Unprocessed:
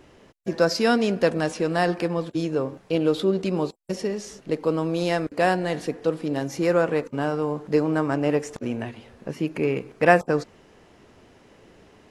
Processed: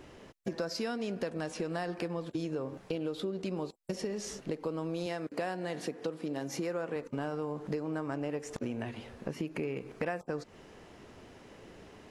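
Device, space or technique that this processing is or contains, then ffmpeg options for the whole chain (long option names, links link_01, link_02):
serial compression, leveller first: -filter_complex "[0:a]acompressor=threshold=-30dB:ratio=1.5,acompressor=threshold=-32dB:ratio=6,asettb=1/sr,asplit=3[link_01][link_02][link_03];[link_01]atrim=end=5.064[link_04];[link_02]atrim=start=5.06:end=6.96,asetpts=PTS-STARTPTS,afade=type=in:duration=0.004:curve=qsin,afade=type=out:start_time=1.896:duration=0.004:curve=qsin,highpass=140[link_05];[link_03]atrim=start=6.956[link_06];[link_04][link_05]acrossfade=duration=0.004:curve1=hsin:curve2=qsin[link_07];[link_07][link_06]acrossfade=duration=0.004:curve1=qsin:curve2=hsin"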